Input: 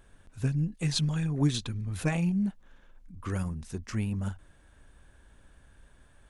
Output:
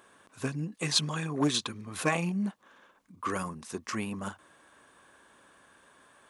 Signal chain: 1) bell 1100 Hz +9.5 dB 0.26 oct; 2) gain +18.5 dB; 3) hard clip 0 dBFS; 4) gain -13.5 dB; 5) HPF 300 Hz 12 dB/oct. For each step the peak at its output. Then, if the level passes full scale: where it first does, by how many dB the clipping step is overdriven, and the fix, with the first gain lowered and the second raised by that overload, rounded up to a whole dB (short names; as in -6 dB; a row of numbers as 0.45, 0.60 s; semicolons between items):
-14.5, +4.0, 0.0, -13.5, -11.0 dBFS; step 2, 4.0 dB; step 2 +14.5 dB, step 4 -9.5 dB